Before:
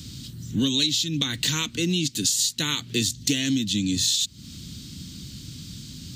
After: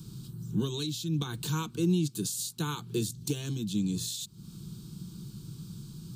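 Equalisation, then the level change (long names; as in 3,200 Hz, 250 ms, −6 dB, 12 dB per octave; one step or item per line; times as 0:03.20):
flat-topped bell 4,400 Hz −11 dB
high-shelf EQ 6,600 Hz −5.5 dB
phaser with its sweep stopped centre 390 Hz, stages 8
0.0 dB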